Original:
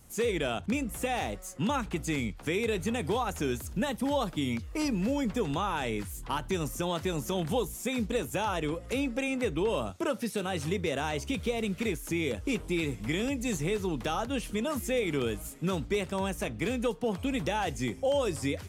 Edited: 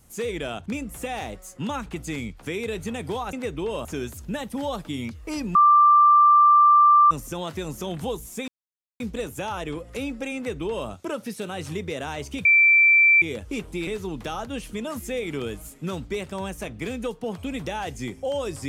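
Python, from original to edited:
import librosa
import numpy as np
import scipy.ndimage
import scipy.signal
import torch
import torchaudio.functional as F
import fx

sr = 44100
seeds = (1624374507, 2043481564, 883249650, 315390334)

y = fx.edit(x, sr, fx.bleep(start_s=5.03, length_s=1.56, hz=1180.0, db=-11.5),
    fx.insert_silence(at_s=7.96, length_s=0.52),
    fx.duplicate(start_s=9.32, length_s=0.52, to_s=3.33),
    fx.bleep(start_s=11.41, length_s=0.77, hz=2340.0, db=-12.5),
    fx.cut(start_s=12.83, length_s=0.84), tone=tone)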